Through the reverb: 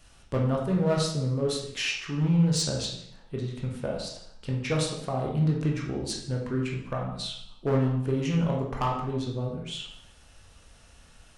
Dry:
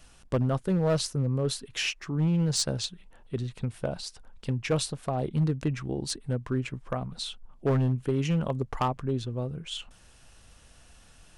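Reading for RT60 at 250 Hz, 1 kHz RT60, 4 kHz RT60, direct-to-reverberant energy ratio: 0.75 s, 0.70 s, 0.65 s, -1.5 dB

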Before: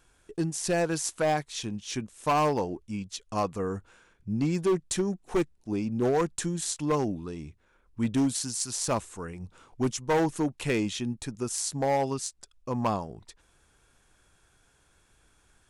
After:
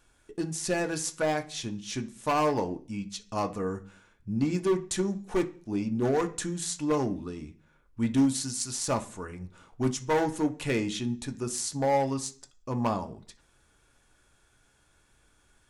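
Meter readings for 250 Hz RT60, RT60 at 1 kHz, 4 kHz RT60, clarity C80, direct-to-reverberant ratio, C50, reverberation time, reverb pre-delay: 0.50 s, 0.40 s, 0.50 s, 21.0 dB, 5.5 dB, 16.5 dB, 0.40 s, 3 ms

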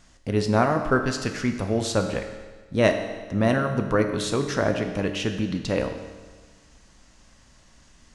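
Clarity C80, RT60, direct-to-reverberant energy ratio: 9.0 dB, 1.4 s, 5.0 dB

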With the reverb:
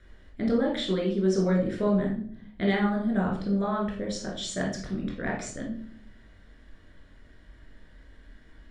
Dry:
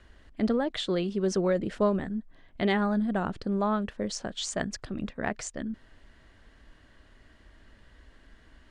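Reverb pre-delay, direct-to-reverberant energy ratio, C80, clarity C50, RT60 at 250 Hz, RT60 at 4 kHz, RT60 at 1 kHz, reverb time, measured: 16 ms, -2.5 dB, 10.0 dB, 4.5 dB, 0.95 s, 0.40 s, 0.45 s, 0.55 s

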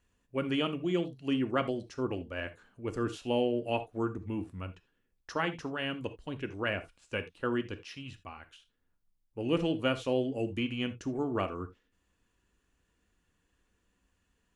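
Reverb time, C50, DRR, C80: no single decay rate, 14.5 dB, 8.5 dB, 21.0 dB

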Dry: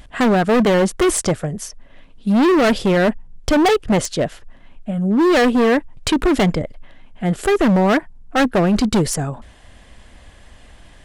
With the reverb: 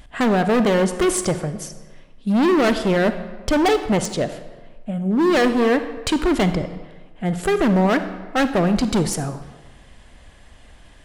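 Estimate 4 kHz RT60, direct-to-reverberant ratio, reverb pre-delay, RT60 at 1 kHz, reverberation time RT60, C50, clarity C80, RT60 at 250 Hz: 0.95 s, 10.0 dB, 36 ms, 1.3 s, 1.3 s, 10.5 dB, 12.5 dB, 1.2 s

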